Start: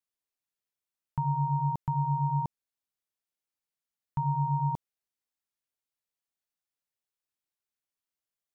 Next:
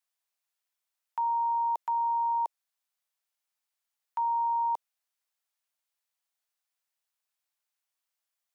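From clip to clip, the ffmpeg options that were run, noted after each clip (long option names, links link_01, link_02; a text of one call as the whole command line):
ffmpeg -i in.wav -af "highpass=frequency=600:width=0.5412,highpass=frequency=600:width=1.3066,volume=5dB" out.wav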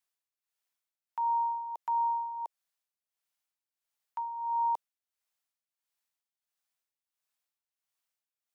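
ffmpeg -i in.wav -af "tremolo=f=1.5:d=0.72" out.wav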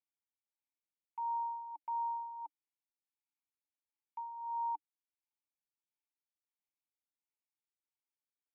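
ffmpeg -i in.wav -filter_complex "[0:a]asplit=3[link_01][link_02][link_03];[link_01]bandpass=frequency=300:width_type=q:width=8,volume=0dB[link_04];[link_02]bandpass=frequency=870:width_type=q:width=8,volume=-6dB[link_05];[link_03]bandpass=frequency=2240:width_type=q:width=8,volume=-9dB[link_06];[link_04][link_05][link_06]amix=inputs=3:normalize=0,volume=1.5dB" out.wav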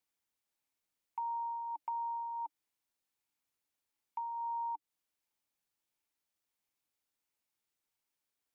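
ffmpeg -i in.wav -af "acompressor=threshold=-44dB:ratio=6,volume=7.5dB" out.wav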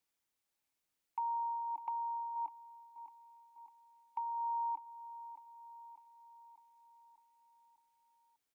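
ffmpeg -i in.wav -af "aecho=1:1:601|1202|1803|2404|3005|3606:0.224|0.128|0.0727|0.0415|0.0236|0.0135,volume=1dB" out.wav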